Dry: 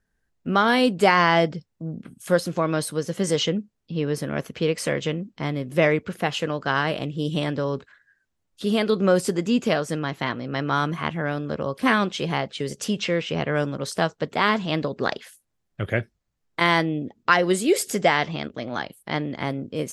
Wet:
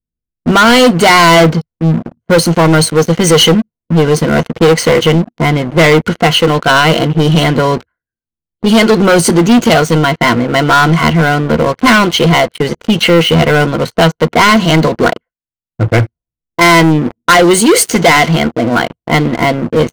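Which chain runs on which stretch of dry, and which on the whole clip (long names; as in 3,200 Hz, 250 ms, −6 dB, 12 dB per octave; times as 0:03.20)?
0:15.05–0:15.98: low-pass filter 2,200 Hz + expander for the loud parts, over −41 dBFS
whole clip: low-pass that shuts in the quiet parts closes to 330 Hz, open at −19 dBFS; EQ curve with evenly spaced ripples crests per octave 1.9, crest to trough 11 dB; leveller curve on the samples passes 5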